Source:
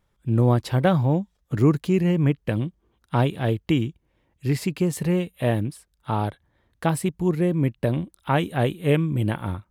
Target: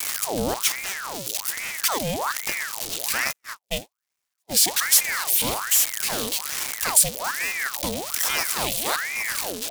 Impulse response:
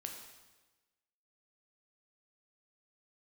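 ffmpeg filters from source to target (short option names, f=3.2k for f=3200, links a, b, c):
-filter_complex "[0:a]aeval=exprs='val(0)+0.5*0.0531*sgn(val(0))':c=same,asplit=3[a][b][c];[a]afade=t=out:st=3.31:d=0.02[d];[b]agate=range=-53dB:threshold=-17dB:ratio=16:detection=peak,afade=t=in:st=3.31:d=0.02,afade=t=out:st=4.52:d=0.02[e];[c]afade=t=in:st=4.52:d=0.02[f];[d][e][f]amix=inputs=3:normalize=0,adynamicequalizer=threshold=0.02:dfrequency=660:dqfactor=0.9:tfrequency=660:tqfactor=0.9:attack=5:release=100:ratio=0.375:range=3:mode=cutabove:tftype=bell,asettb=1/sr,asplit=3[g][h][i];[g]atrim=end=0.544[j];[h]atrim=start=0.54:end=1.84,asetpts=PTS-STARTPTS,afade=t=in:d=0.004:c=qsin,afade=t=out:st=1.296:d=0.004:c=qsin,aeval=exprs='(tanh(15.8*val(0)+0.4)-tanh(0.4))/15.8':c=same[k];[i]atrim=start=1.836[l];[j][k]acrossfade=d=0.004:c1=hsin:c2=qsin[m];[m][l]acrossfade=d=0.004:c1=qsin:c2=hsin,aexciter=amount=8:drive=6.2:freq=2.8k,aeval=exprs='val(0)*sin(2*PI*1300*n/s+1300*0.75/1.2*sin(2*PI*1.2*n/s))':c=same,volume=-5.5dB"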